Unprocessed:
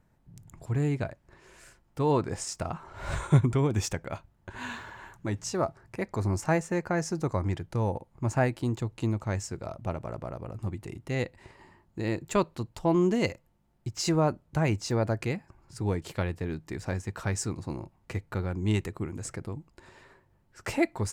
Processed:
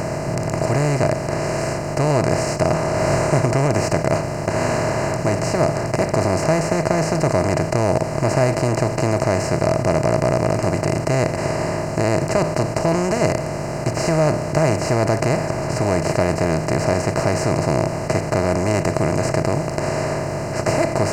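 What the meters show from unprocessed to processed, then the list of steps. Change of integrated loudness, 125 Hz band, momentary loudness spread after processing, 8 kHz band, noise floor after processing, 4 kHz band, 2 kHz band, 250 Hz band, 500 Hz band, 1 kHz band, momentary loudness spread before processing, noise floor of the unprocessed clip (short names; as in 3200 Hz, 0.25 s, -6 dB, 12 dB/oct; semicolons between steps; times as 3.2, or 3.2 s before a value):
+11.0 dB, +9.5 dB, 4 LU, +11.0 dB, -25 dBFS, +10.5 dB, +12.0 dB, +9.5 dB, +14.0 dB, +13.5 dB, 13 LU, -67 dBFS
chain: per-bin compression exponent 0.2; Butterworth band-stop 3500 Hz, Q 3.4; bell 630 Hz +10.5 dB 0.25 oct; gain -2.5 dB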